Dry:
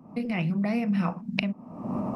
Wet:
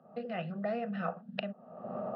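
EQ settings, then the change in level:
band-pass filter 290–2,200 Hz
notch filter 870 Hz, Q 15
phaser with its sweep stopped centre 1,500 Hz, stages 8
+1.0 dB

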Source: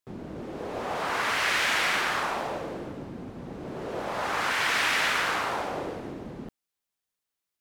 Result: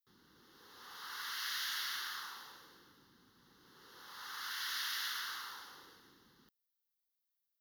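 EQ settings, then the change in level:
first-order pre-emphasis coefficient 0.97
phaser with its sweep stopped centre 2,400 Hz, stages 6
notch filter 7,400 Hz, Q 23
−1.5 dB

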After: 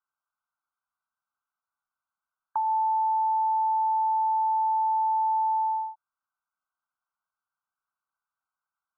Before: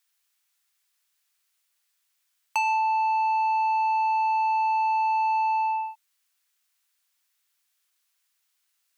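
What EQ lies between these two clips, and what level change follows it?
linear-phase brick-wall low-pass 1,600 Hz
phaser with its sweep stopped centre 1,100 Hz, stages 4
0.0 dB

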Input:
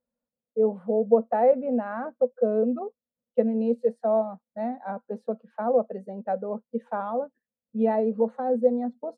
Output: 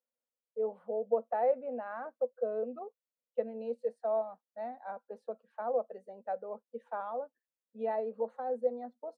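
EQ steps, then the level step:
high-pass filter 470 Hz 12 dB per octave
−7.0 dB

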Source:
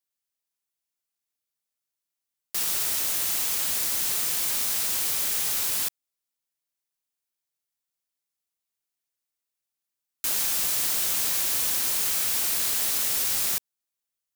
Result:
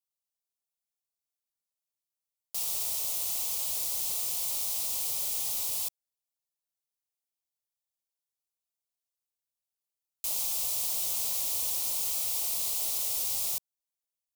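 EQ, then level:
phaser with its sweep stopped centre 670 Hz, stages 4
−5.0 dB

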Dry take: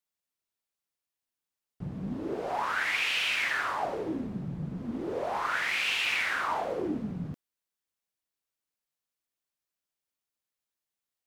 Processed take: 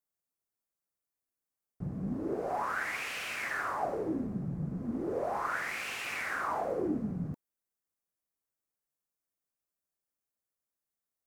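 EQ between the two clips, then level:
parametric band 3,300 Hz −14.5 dB 1.3 octaves
notch filter 920 Hz, Q 14
0.0 dB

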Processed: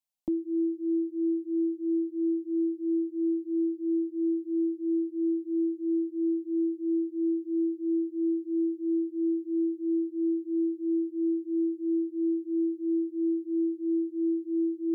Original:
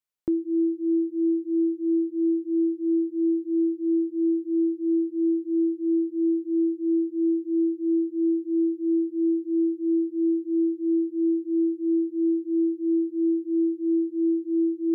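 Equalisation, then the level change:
phaser with its sweep stopped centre 410 Hz, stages 6
0.0 dB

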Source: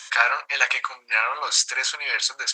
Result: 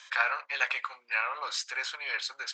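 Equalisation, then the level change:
low-pass filter 4,200 Hz 12 dB per octave
−8.0 dB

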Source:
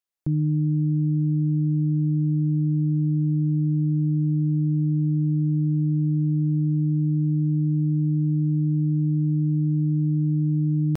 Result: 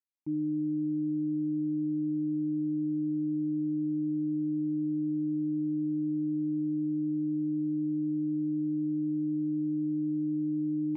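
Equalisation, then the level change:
formant filter u
0.0 dB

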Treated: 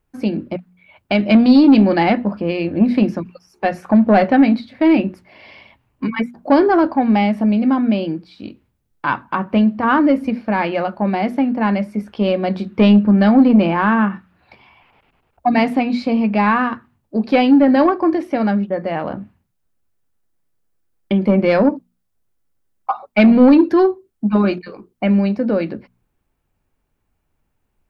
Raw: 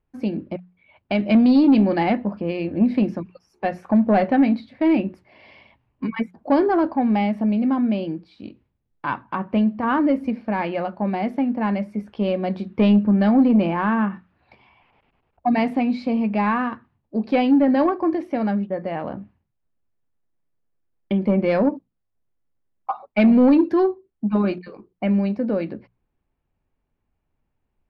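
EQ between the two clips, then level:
parametric band 1,400 Hz +3 dB 0.39 octaves
high-shelf EQ 4,200 Hz +8 dB
mains-hum notches 60/120/180/240 Hz
+5.0 dB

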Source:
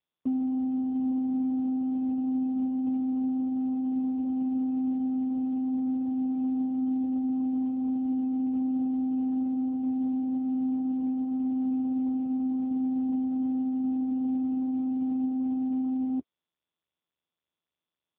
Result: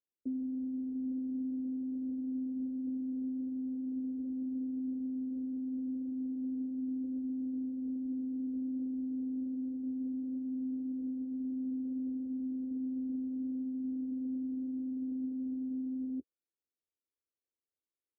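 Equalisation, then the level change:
Chebyshev low-pass filter 570 Hz, order 3
phaser with its sweep stopped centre 360 Hz, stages 4
−5.5 dB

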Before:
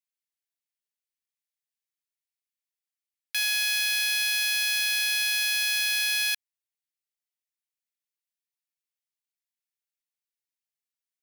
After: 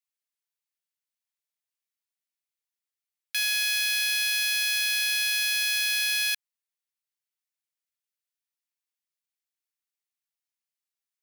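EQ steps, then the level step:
high-pass filter 910 Hz 12 dB per octave
0.0 dB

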